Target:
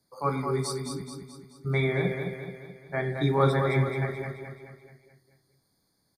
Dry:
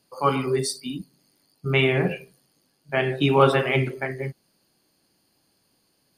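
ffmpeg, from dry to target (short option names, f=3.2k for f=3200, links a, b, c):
-filter_complex "[0:a]acrossover=split=160|3500[a][b][c];[a]acontrast=51[d];[d][b][c]amix=inputs=3:normalize=0,asuperstop=centerf=2800:order=20:qfactor=3,aecho=1:1:215|430|645|860|1075|1290:0.501|0.251|0.125|0.0626|0.0313|0.0157,volume=-7dB"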